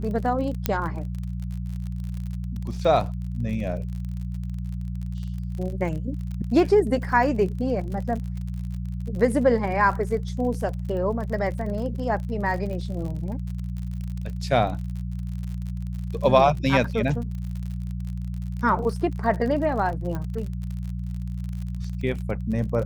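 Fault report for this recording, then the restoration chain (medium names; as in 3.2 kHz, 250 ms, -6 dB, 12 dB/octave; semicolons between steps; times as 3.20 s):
crackle 48 per s -32 dBFS
hum 60 Hz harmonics 3 -30 dBFS
0.66 s: pop -7 dBFS
20.15 s: pop -19 dBFS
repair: de-click; de-hum 60 Hz, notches 3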